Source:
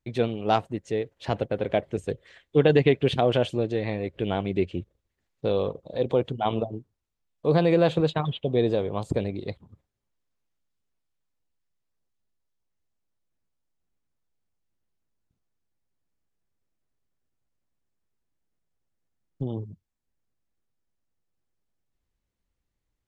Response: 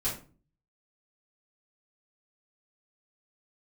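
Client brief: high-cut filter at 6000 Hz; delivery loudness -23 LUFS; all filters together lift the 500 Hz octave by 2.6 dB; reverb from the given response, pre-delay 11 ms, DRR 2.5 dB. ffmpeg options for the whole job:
-filter_complex "[0:a]lowpass=6k,equalizer=f=500:t=o:g=3,asplit=2[a][b];[1:a]atrim=start_sample=2205,adelay=11[c];[b][c]afir=irnorm=-1:irlink=0,volume=-8dB[d];[a][d]amix=inputs=2:normalize=0,volume=-1.5dB"

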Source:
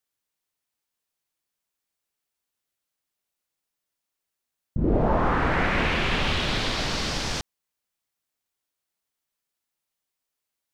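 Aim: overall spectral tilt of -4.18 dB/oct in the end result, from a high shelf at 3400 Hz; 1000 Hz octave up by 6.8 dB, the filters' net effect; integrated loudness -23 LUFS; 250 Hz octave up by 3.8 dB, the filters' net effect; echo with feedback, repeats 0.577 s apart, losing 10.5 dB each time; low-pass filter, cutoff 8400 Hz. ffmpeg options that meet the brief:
-af "lowpass=8.4k,equalizer=f=250:t=o:g=4.5,equalizer=f=1k:t=o:g=9,highshelf=f=3.4k:g=-8.5,aecho=1:1:577|1154|1731:0.299|0.0896|0.0269,volume=-1.5dB"

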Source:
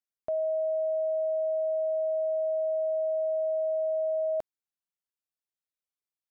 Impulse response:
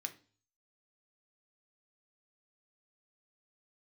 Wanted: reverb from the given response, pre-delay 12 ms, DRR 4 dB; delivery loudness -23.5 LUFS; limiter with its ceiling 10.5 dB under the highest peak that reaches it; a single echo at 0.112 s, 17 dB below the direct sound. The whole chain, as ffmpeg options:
-filter_complex "[0:a]alimiter=level_in=11.5dB:limit=-24dB:level=0:latency=1,volume=-11.5dB,aecho=1:1:112:0.141,asplit=2[a][b];[1:a]atrim=start_sample=2205,adelay=12[c];[b][c]afir=irnorm=-1:irlink=0,volume=-2.5dB[d];[a][d]amix=inputs=2:normalize=0,volume=20.5dB"

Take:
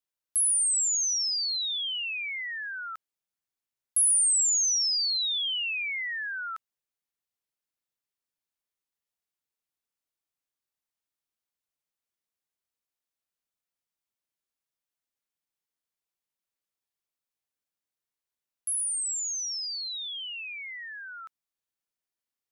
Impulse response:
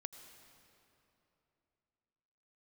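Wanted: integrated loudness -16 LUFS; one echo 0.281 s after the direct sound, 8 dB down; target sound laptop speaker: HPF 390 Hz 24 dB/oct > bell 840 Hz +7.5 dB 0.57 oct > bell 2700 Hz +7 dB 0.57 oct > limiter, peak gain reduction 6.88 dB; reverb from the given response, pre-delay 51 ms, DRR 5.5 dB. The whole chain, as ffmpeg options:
-filter_complex "[0:a]aecho=1:1:281:0.398,asplit=2[a][b];[1:a]atrim=start_sample=2205,adelay=51[c];[b][c]afir=irnorm=-1:irlink=0,volume=-2dB[d];[a][d]amix=inputs=2:normalize=0,highpass=f=390:w=0.5412,highpass=f=390:w=1.3066,equalizer=f=840:t=o:w=0.57:g=7.5,equalizer=f=2.7k:t=o:w=0.57:g=7,volume=10dB,alimiter=limit=-10dB:level=0:latency=1"

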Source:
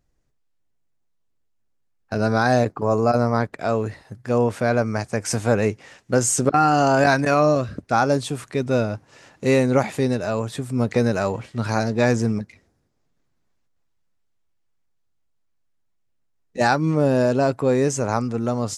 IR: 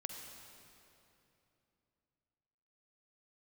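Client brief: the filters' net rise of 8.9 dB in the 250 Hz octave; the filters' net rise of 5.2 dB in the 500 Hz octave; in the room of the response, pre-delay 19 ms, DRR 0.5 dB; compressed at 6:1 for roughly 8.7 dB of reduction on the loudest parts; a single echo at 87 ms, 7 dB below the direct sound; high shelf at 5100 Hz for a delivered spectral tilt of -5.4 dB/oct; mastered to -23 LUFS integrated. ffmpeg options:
-filter_complex "[0:a]equalizer=f=250:t=o:g=9,equalizer=f=500:t=o:g=4,highshelf=f=5.1k:g=3.5,acompressor=threshold=-16dB:ratio=6,aecho=1:1:87:0.447,asplit=2[a][b];[1:a]atrim=start_sample=2205,adelay=19[c];[b][c]afir=irnorm=-1:irlink=0,volume=1dB[d];[a][d]amix=inputs=2:normalize=0,volume=-4.5dB"

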